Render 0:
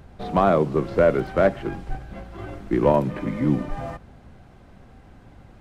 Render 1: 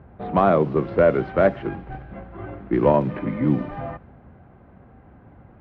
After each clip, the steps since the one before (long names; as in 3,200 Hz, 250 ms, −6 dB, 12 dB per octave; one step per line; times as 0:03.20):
low-pass filter 3,100 Hz 12 dB per octave
low-pass that shuts in the quiet parts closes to 1,600 Hz, open at −13.5 dBFS
high-pass filter 61 Hz
level +1 dB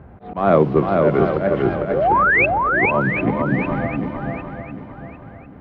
sound drawn into the spectrogram rise, 0:01.85–0:02.46, 350–2,700 Hz −20 dBFS
volume swells 215 ms
feedback echo with a long and a short gap by turns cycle 751 ms, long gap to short 1.5 to 1, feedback 31%, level −3.5 dB
level +5 dB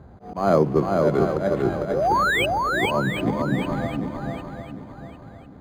linearly interpolated sample-rate reduction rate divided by 8×
level −3.5 dB